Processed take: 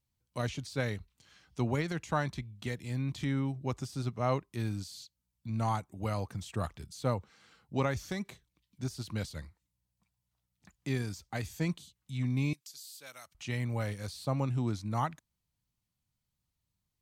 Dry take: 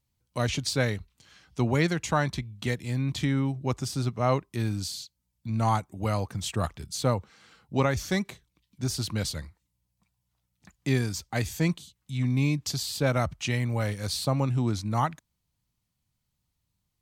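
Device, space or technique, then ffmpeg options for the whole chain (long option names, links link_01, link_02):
de-esser from a sidechain: -filter_complex "[0:a]asettb=1/sr,asplit=3[link_01][link_02][link_03];[link_01]atrim=end=12.534[link_04];[link_02]atrim=start=12.53:end=13.35,asetpts=PTS-STARTPTS,afade=type=in:duration=0.004:curve=qsin,afade=type=out:start_time=0.816:duration=0.004:curve=qsin,aderivative[link_05];[link_03]atrim=start=13.346[link_06];[link_04][link_05]acrossfade=duration=0.004:curve1=hsin:curve2=qsin[link_07];[link_07][link_06]acrossfade=duration=0.004:curve1=qsin:curve2=hsin,asplit=2[link_08][link_09];[link_09]highpass=6000,apad=whole_len=750308[link_10];[link_08][link_10]sidechaincompress=threshold=-42dB:ratio=4:attack=1.2:release=70,volume=-5.5dB"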